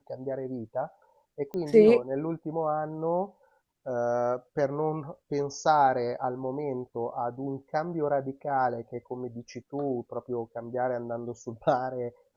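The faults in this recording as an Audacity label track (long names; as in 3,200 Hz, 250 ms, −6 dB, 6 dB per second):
1.540000	1.540000	click −24 dBFS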